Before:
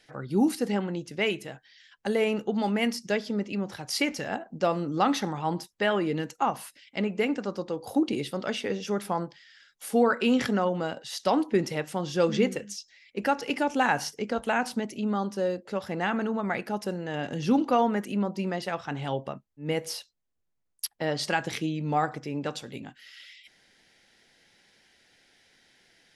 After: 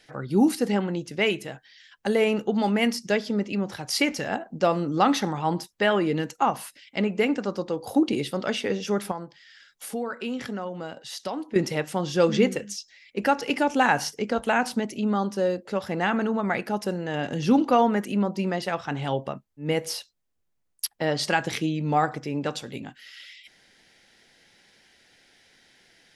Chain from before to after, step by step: 9.11–11.56 s: compression 2:1, threshold -41 dBFS, peak gain reduction 13 dB; trim +3.5 dB

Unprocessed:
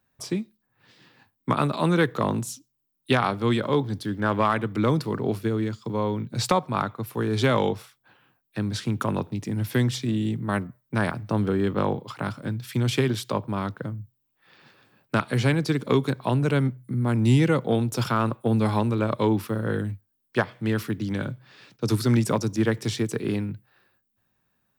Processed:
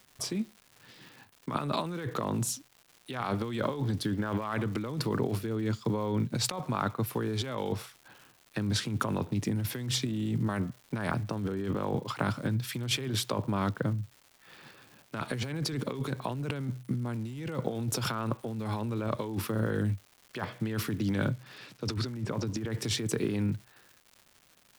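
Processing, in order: 21.32–22.70 s: low-pass that closes with the level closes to 1.7 kHz, closed at -16.5 dBFS; compressor with a negative ratio -29 dBFS, ratio -1; crackle 280 per s -41 dBFS; trim -2.5 dB

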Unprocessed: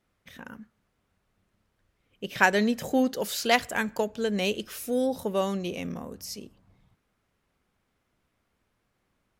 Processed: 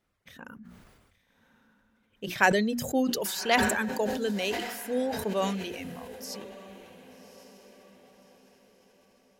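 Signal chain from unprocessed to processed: reverb removal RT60 1.7 s; hum notches 60/120/180/240/300/360 Hz; echo that smears into a reverb 1140 ms, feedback 41%, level -15 dB; decay stretcher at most 41 dB/s; trim -2 dB

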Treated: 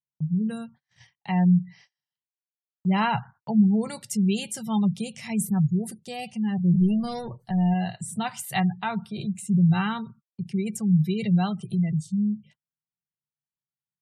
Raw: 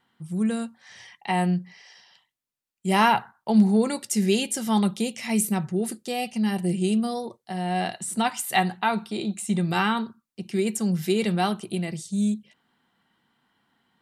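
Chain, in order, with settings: 6.74–7.74 s: power-law waveshaper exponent 0.7; resonant low shelf 200 Hz +11 dB, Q 3; spectral gate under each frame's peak -30 dB strong; gate -44 dBFS, range -35 dB; trim -5 dB

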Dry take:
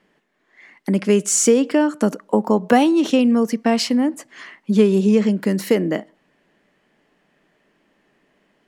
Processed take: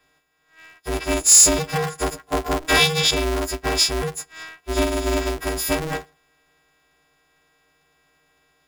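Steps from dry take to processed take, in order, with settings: partials quantised in pitch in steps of 6 st; 2.68–3.11 s: frequency weighting D; polarity switched at an audio rate 160 Hz; trim -7 dB

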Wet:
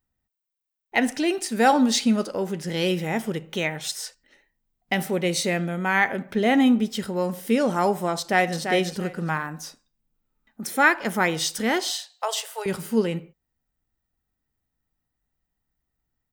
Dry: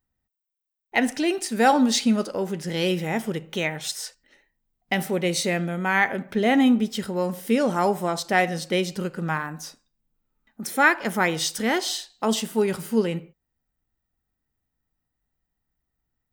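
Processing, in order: 8.18–8.61 s: echo throw 340 ms, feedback 20%, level -6.5 dB; 11.90–12.66 s: steep high-pass 510 Hz 48 dB/octave

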